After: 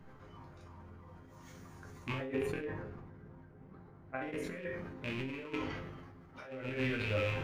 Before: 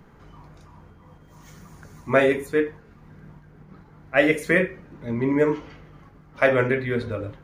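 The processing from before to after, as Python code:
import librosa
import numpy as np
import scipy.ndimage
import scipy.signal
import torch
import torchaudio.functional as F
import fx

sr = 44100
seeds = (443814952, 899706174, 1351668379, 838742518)

y = fx.rattle_buzz(x, sr, strikes_db=-35.0, level_db=-19.0)
y = fx.high_shelf(y, sr, hz=2100.0, db=-12.0, at=(2.12, 4.51))
y = fx.over_compress(y, sr, threshold_db=-27.0, ratio=-0.5)
y = fx.high_shelf(y, sr, hz=5400.0, db=-5.5)
y = fx.resonator_bank(y, sr, root=41, chord='minor', decay_s=0.31)
y = fx.sustainer(y, sr, db_per_s=33.0)
y = y * librosa.db_to_amplitude(1.0)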